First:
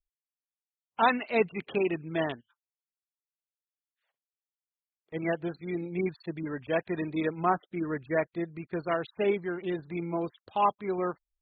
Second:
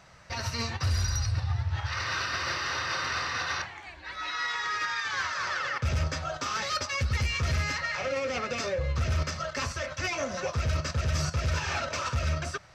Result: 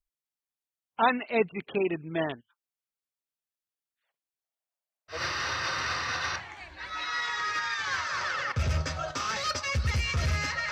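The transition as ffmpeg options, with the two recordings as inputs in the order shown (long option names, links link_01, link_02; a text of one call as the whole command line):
ffmpeg -i cue0.wav -i cue1.wav -filter_complex "[0:a]asettb=1/sr,asplit=3[link_01][link_02][link_03];[link_01]atrim=end=4.444[link_04];[link_02]atrim=start=4.44:end=5.24,asetpts=PTS-STARTPTS,afade=type=in:duration=0.004:curve=qsin,afade=type=out:start_time=0.796:duration=0.004:curve=qsin,highpass=frequency=640:width_type=q:width=4.2[link_05];[link_03]atrim=start=5.236[link_06];[link_04][link_05]acrossfade=duration=0.004:curve1=hsin:curve2=qsin[link_07];[link_07][link_06]acrossfade=duration=0.004:curve1=qsin:curve2=hsin,apad=whole_dur=10.71,atrim=end=10.71,atrim=end=5.24,asetpts=PTS-STARTPTS[link_08];[1:a]atrim=start=2.34:end=7.97,asetpts=PTS-STARTPTS[link_09];[link_08][link_09]acrossfade=duration=0.16:curve1=tri:curve2=tri" out.wav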